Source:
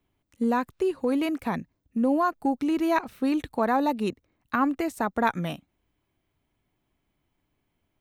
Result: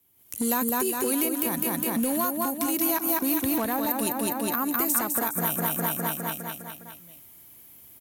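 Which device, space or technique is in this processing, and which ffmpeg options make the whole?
FM broadcast chain: -filter_complex "[0:a]asettb=1/sr,asplit=3[link_01][link_02][link_03];[link_01]atrim=end=3.154[link_04];[link_02]atrim=start=3.15:end=3.91,asetpts=PTS-STARTPTS,afade=type=in:duration=0.004:curve=qsin,afade=type=out:start_time=0.756:duration=0.004:curve=qsin,bass=frequency=250:gain=6,treble=frequency=4000:gain=-9[link_05];[link_03]atrim=start=3.906[link_06];[link_04][link_05]acrossfade=duration=0.004:curve1=hsin:curve2=qsin[link_07];[link_07][link_06]acrossfade=duration=0.004:curve1=qsin:curve2=hsin,highpass=77,aecho=1:1:204|408|612|816|1020|1224|1428|1632:0.562|0.326|0.189|0.11|0.0636|0.0369|0.0214|0.0124,dynaudnorm=framelen=150:gausssize=3:maxgain=15dB,acrossover=split=1800|7100[link_08][link_09][link_10];[link_08]acompressor=threshold=-21dB:ratio=4[link_11];[link_09]acompressor=threshold=-39dB:ratio=4[link_12];[link_10]acompressor=threshold=-45dB:ratio=4[link_13];[link_11][link_12][link_13]amix=inputs=3:normalize=0,aemphasis=mode=production:type=50fm,alimiter=limit=-15.5dB:level=0:latency=1:release=250,asoftclip=type=hard:threshold=-19dB,lowpass=frequency=15000:width=0.5412,lowpass=frequency=15000:width=1.3066,aemphasis=mode=production:type=50fm,volume=-2dB"

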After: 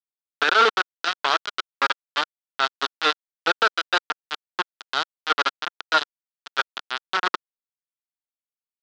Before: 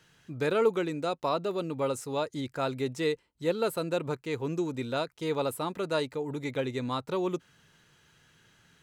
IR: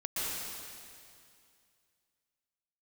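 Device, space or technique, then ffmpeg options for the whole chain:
hand-held game console: -af "acrusher=bits=3:mix=0:aa=0.000001,highpass=480,equalizer=frequency=540:width_type=q:width=4:gain=-9,equalizer=frequency=1400:width_type=q:width=4:gain=9,equalizer=frequency=2200:width_type=q:width=4:gain=-5,equalizer=frequency=3400:width_type=q:width=4:gain=4,lowpass=frequency=4700:width=0.5412,lowpass=frequency=4700:width=1.3066,volume=7dB"

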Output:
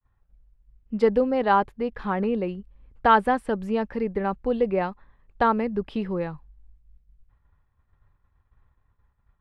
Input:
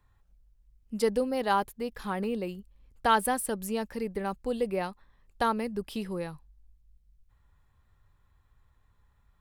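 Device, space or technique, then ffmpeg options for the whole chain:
hearing-loss simulation: -af "lowpass=2200,agate=range=-33dB:threshold=-57dB:ratio=3:detection=peak,volume=6.5dB"

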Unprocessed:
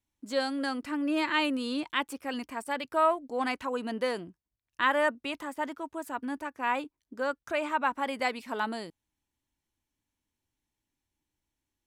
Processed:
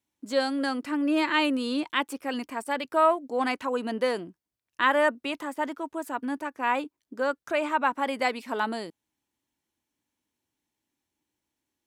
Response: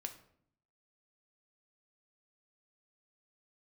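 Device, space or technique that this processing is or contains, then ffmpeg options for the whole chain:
filter by subtraction: -filter_complex "[0:a]asplit=2[link_01][link_02];[link_02]lowpass=300,volume=-1[link_03];[link_01][link_03]amix=inputs=2:normalize=0,volume=2.5dB"

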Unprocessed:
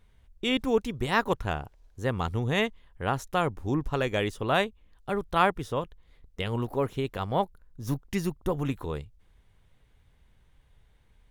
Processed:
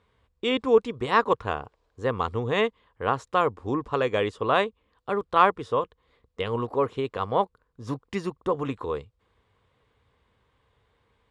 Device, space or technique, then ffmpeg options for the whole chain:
car door speaker: -af "highpass=94,equalizer=frequency=160:width_type=q:width=4:gain=-8,equalizer=frequency=470:width_type=q:width=4:gain=8,equalizer=frequency=1100:width_type=q:width=4:gain=10,equalizer=frequency=6100:width_type=q:width=4:gain=-8,lowpass=frequency=7500:width=0.5412,lowpass=frequency=7500:width=1.3066"

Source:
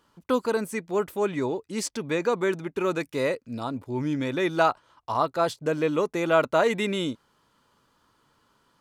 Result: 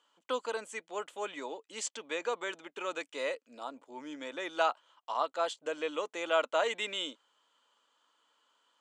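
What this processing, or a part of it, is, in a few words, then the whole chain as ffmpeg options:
phone speaker on a table: -filter_complex "[0:a]highpass=frequency=350:width=0.5412,highpass=frequency=350:width=1.3066,equalizer=frequency=380:width_type=q:width=4:gain=-10,equalizer=frequency=3100:width_type=q:width=4:gain=10,equalizer=frequency=5100:width_type=q:width=4:gain=-4,equalizer=frequency=7300:width_type=q:width=4:gain=7,lowpass=frequency=8500:width=0.5412,lowpass=frequency=8500:width=1.3066,asettb=1/sr,asplit=3[link_01][link_02][link_03];[link_01]atrim=end=3.484[link_04];[link_02]atrim=start=3.48:end=4.49,asetpts=PTS-STARTPTS,afade=type=in:duration=0.004:curve=qsin,afade=type=out:start_time=1.006:duration=0.004:curve=qsin,equalizer=frequency=3200:width_type=o:width=1.3:gain=-5.5[link_05];[link_03]atrim=start=4.486[link_06];[link_04][link_05]acrossfade=duration=0.004:curve1=hsin:curve2=qsin[link_07];[link_07][link_06]acrossfade=duration=0.004:curve1=qsin:curve2=hsin,volume=-7dB"

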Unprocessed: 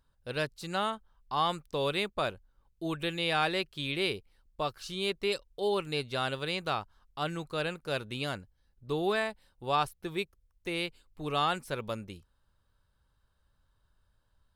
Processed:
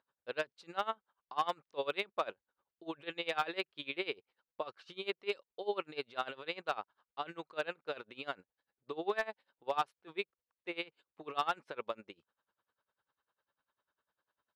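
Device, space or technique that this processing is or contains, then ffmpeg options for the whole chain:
helicopter radio: -af "highpass=400,lowpass=2900,aeval=exprs='val(0)*pow(10,-22*(0.5-0.5*cos(2*PI*10*n/s))/20)':channel_layout=same,asoftclip=type=hard:threshold=-24dB,volume=1.5dB"

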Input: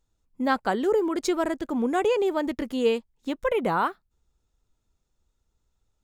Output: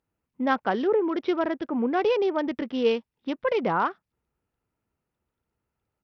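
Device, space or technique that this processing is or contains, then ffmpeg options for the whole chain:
Bluetooth headset: -af "highpass=110,aresample=8000,aresample=44100" -ar 44100 -c:a sbc -b:a 64k

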